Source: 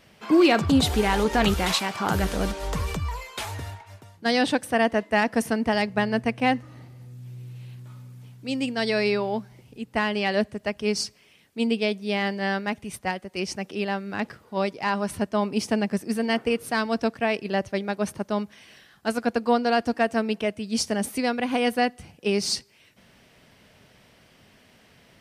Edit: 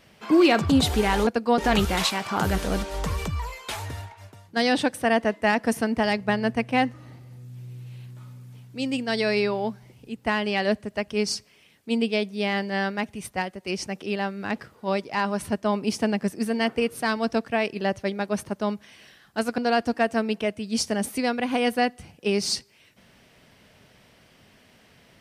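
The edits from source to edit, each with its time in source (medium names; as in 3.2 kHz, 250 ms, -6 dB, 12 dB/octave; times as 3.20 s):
19.27–19.58 s: move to 1.27 s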